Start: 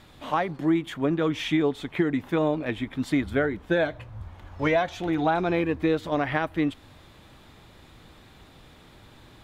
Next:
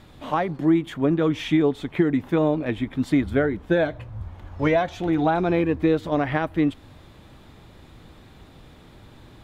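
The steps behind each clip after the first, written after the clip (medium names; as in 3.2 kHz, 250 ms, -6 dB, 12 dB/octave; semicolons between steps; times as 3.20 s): tilt shelf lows +3 dB, about 710 Hz; trim +2 dB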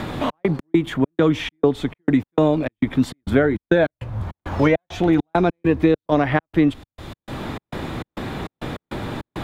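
trance gate "xx.x.xx.xx." 101 bpm -60 dB; three bands compressed up and down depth 70%; trim +5.5 dB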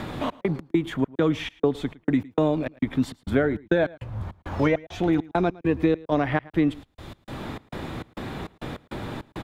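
delay 110 ms -22 dB; trim -5 dB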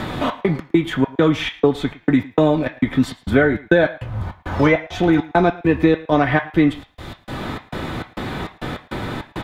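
on a send at -1 dB: inverse Chebyshev high-pass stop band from 220 Hz, stop band 60 dB + reverberation RT60 0.45 s, pre-delay 3 ms; on the sum: trim +6.5 dB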